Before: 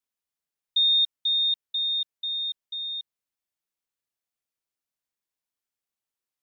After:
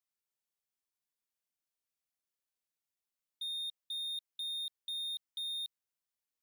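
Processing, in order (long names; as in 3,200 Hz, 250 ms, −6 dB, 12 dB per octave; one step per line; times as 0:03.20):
played backwards from end to start
high-shelf EQ 3,500 Hz +3.5 dB
slew-rate limiting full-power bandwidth 95 Hz
level −6 dB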